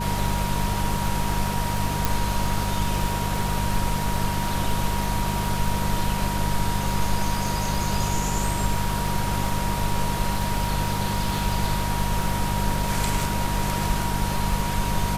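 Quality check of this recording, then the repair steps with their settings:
crackle 52 per s -29 dBFS
hum 50 Hz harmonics 4 -28 dBFS
whine 950 Hz -30 dBFS
2.05 s: pop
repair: de-click; band-stop 950 Hz, Q 30; de-hum 50 Hz, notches 4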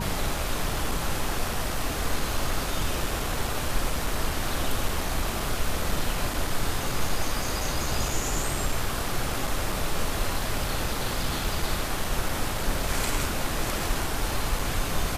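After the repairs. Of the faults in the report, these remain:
nothing left

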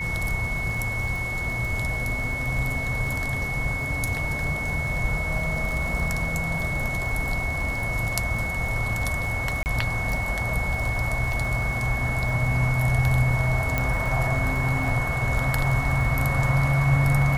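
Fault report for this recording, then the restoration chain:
crackle 31 per s -30 dBFS
whine 2.2 kHz -28 dBFS
9.63–9.66 s: dropout 29 ms
13.78 s: pop -10 dBFS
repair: de-click; band-stop 2.2 kHz, Q 30; interpolate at 9.63 s, 29 ms

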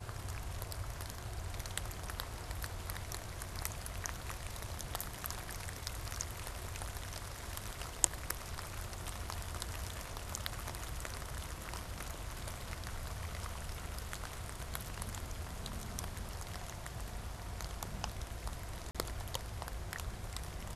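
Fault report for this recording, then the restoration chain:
18.91–18.95 s: dropout 36 ms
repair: interpolate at 18.91 s, 36 ms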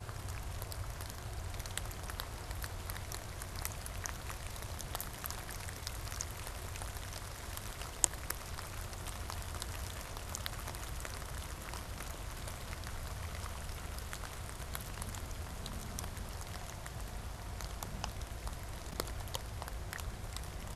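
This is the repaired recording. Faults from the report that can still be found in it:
nothing left

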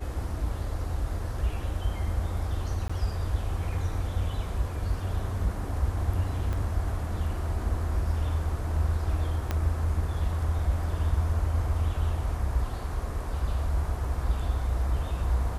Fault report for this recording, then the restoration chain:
2.88–2.90 s: dropout 15 ms
6.53 s: pop -21 dBFS
9.51 s: pop -15 dBFS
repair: de-click; interpolate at 2.88 s, 15 ms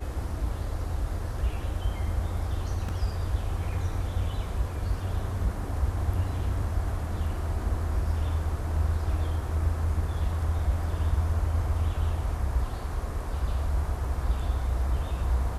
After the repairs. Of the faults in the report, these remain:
6.53 s: pop
9.51 s: pop

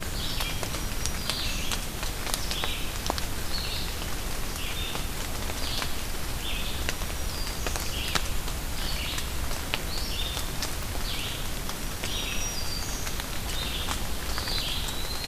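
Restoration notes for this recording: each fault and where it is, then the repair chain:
10.83 s: pop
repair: de-click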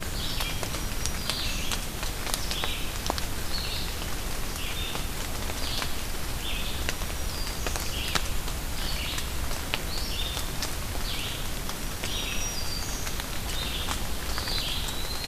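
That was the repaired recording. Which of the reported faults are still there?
nothing left

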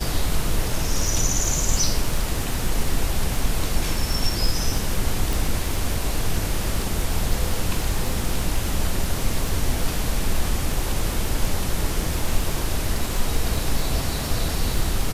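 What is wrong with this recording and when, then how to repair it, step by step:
crackle 24 per s -24 dBFS
5.33 s: pop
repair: de-click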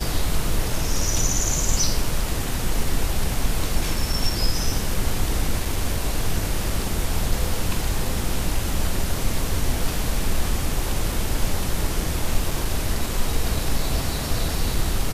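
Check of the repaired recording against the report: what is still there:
nothing left

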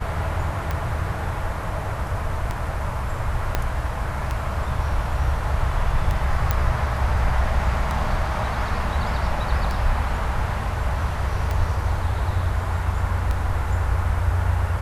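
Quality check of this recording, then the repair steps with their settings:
tick 33 1/3 rpm -13 dBFS
3.55 s: pop -7 dBFS
6.51 s: pop -7 dBFS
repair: de-click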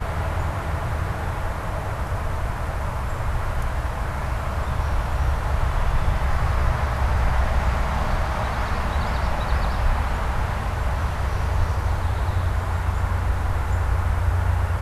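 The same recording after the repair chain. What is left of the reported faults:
3.55 s: pop

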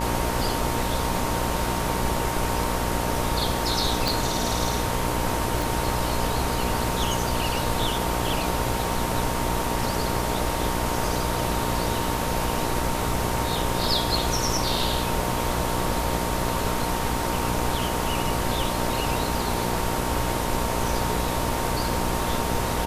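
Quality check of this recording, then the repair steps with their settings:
buzz 60 Hz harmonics 19 -29 dBFS
whine 920 Hz -32 dBFS
4.08 s: pop
5.62 s: pop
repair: de-click; band-stop 920 Hz, Q 30; de-hum 60 Hz, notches 19

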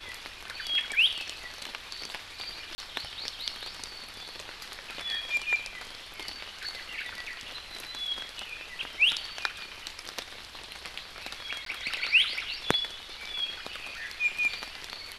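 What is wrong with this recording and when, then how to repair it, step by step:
2.75–2.78 s: dropout 30 ms
11.65–11.66 s: dropout 13 ms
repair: interpolate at 2.75 s, 30 ms; interpolate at 11.65 s, 13 ms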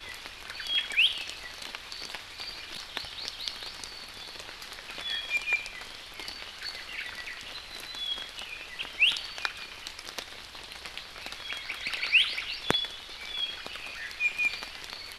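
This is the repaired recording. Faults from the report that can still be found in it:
nothing left

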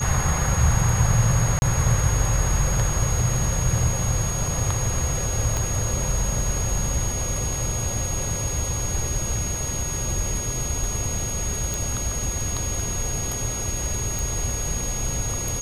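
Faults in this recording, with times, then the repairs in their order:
whine 6.6 kHz -28 dBFS
1.59–1.62 s: dropout 31 ms
5.57 s: pop
11.74 s: pop
14.19 s: pop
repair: de-click; band-stop 6.6 kHz, Q 30; interpolate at 1.59 s, 31 ms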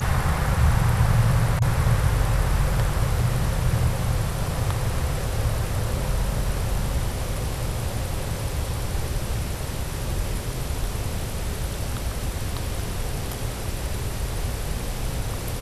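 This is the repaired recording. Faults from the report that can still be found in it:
5.57 s: pop

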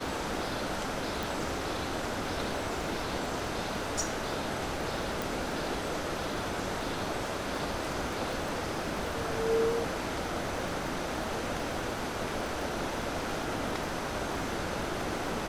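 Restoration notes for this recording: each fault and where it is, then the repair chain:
crackle 56 per s -38 dBFS
1.23 s: pop
5.22 s: pop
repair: de-click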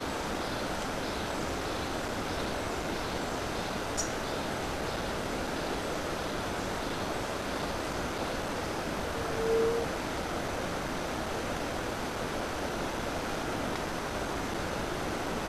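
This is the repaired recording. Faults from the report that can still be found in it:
nothing left

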